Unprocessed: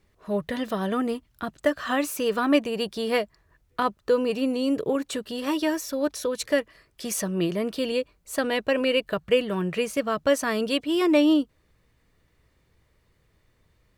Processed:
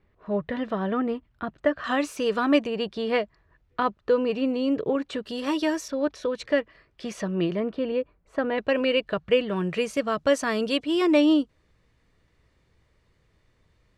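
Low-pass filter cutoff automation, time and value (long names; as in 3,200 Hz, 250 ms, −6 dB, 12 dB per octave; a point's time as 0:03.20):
2,400 Hz
from 0:01.84 6,000 Hz
from 0:02.67 3,500 Hz
from 0:05.25 7,300 Hz
from 0:05.88 3,300 Hz
from 0:07.60 1,700 Hz
from 0:08.58 4,300 Hz
from 0:09.56 7,500 Hz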